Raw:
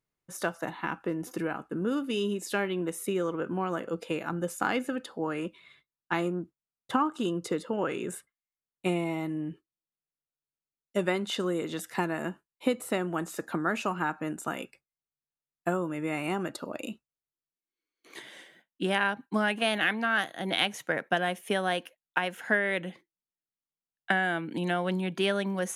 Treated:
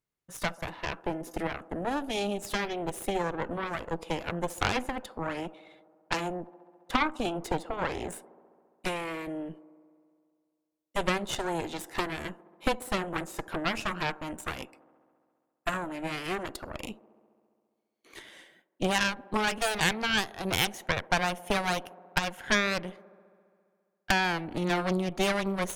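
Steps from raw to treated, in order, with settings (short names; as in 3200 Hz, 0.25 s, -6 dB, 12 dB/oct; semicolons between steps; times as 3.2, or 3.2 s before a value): added harmonics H 8 -10 dB, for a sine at -9 dBFS; band-limited delay 68 ms, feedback 80%, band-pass 460 Hz, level -19 dB; gain -2.5 dB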